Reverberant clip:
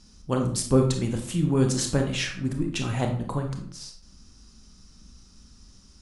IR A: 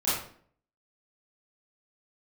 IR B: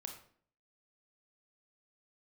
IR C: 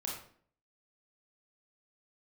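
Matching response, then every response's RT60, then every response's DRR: B; 0.55, 0.55, 0.55 s; -12.5, 3.0, -3.0 dB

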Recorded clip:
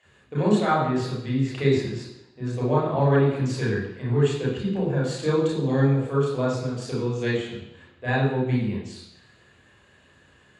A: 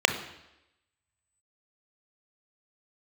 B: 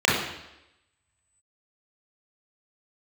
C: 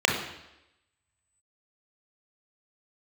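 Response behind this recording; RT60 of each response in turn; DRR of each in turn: B; 0.90, 0.90, 0.90 s; 6.5, -6.5, -0.5 dB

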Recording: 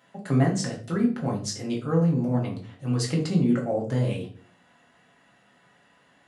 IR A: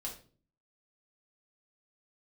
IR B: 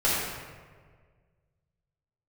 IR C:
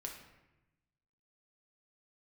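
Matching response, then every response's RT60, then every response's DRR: A; 0.40, 1.7, 1.0 s; -2.5, -10.0, 0.5 dB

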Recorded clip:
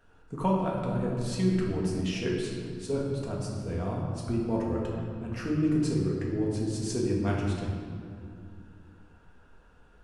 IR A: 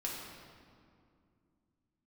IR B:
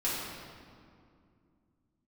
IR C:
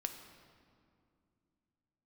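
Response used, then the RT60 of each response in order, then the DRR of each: A; 2.4, 2.4, 2.3 s; -4.0, -9.0, 5.5 dB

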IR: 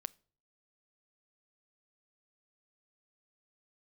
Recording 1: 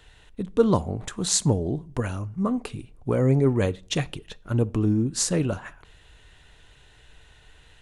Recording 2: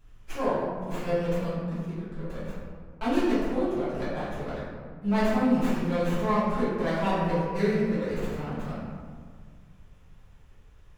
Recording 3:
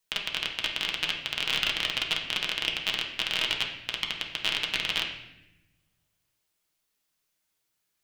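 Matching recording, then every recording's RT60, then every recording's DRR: 1; 0.45, 1.8, 0.90 s; 17.5, -13.0, -0.5 dB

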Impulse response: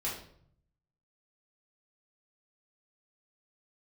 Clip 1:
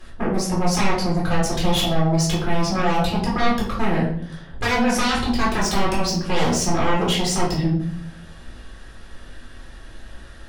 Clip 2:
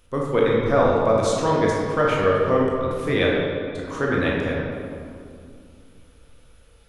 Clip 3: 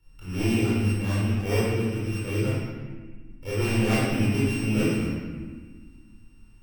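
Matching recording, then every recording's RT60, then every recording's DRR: 1; 0.60, 2.4, 1.5 s; -6.0, -4.0, -9.5 dB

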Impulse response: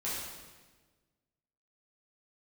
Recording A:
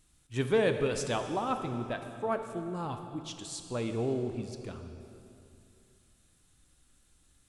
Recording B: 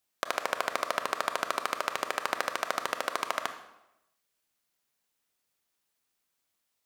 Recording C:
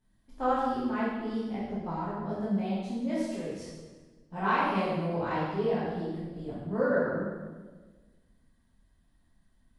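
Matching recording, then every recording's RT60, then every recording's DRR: C; 2.7, 0.90, 1.4 s; 6.5, 8.0, -9.5 dB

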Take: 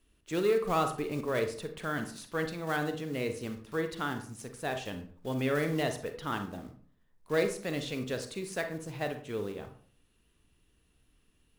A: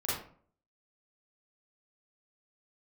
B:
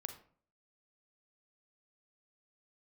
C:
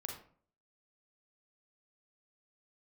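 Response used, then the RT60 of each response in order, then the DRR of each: B; 0.50, 0.50, 0.50 s; -9.5, 6.5, 0.5 dB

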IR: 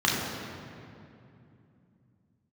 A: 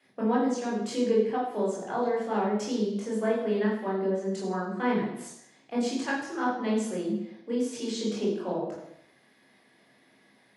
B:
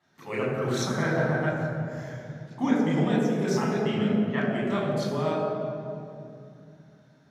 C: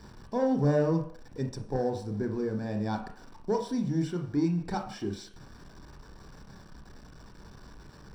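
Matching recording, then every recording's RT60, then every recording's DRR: B; not exponential, 2.7 s, 0.55 s; -4.5, -4.5, 4.0 dB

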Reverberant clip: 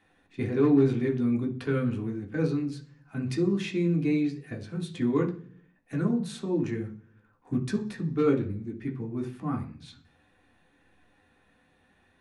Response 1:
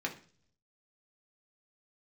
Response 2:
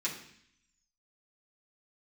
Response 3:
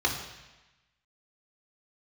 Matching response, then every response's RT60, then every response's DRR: 1; 0.45, 0.65, 1.1 s; 0.0, -7.0, -3.0 dB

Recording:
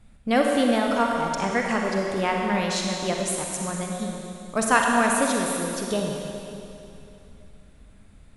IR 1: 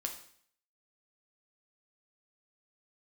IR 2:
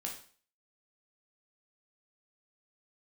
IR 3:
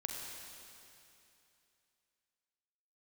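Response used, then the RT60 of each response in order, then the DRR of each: 3; 0.60, 0.45, 2.8 s; 3.0, -0.5, 0.0 dB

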